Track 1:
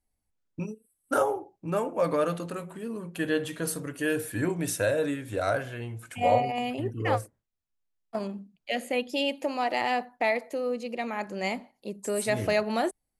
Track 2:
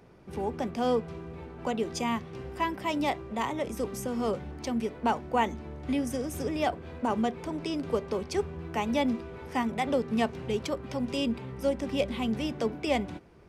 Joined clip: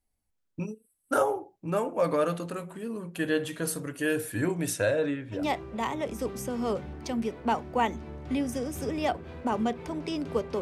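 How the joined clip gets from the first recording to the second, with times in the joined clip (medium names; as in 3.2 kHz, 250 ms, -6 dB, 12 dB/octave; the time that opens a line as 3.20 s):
track 1
4.73–5.45 s: low-pass 9.5 kHz -> 1.5 kHz
5.38 s: go over to track 2 from 2.96 s, crossfade 0.14 s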